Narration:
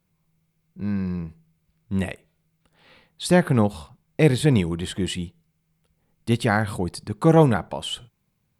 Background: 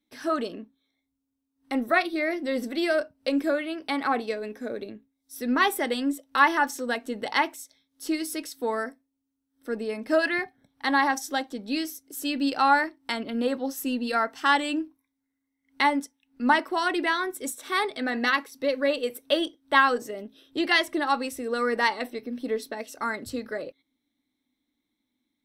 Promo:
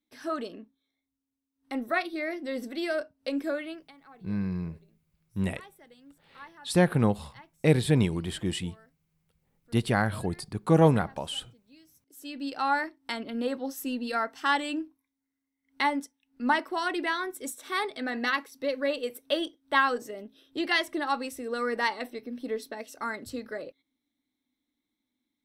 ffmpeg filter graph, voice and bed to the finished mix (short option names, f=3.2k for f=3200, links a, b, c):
-filter_complex "[0:a]adelay=3450,volume=-4.5dB[a];[1:a]volume=18.5dB,afade=t=out:st=3.68:d=0.24:silence=0.0749894,afade=t=in:st=11.86:d=1.11:silence=0.0630957[b];[a][b]amix=inputs=2:normalize=0"